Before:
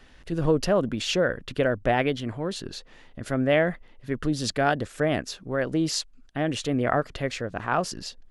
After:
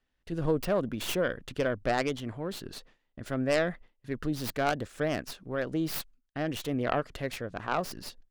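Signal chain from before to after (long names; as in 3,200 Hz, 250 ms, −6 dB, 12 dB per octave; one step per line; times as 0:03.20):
stylus tracing distortion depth 0.34 ms
noise gate with hold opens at −38 dBFS
level −5.5 dB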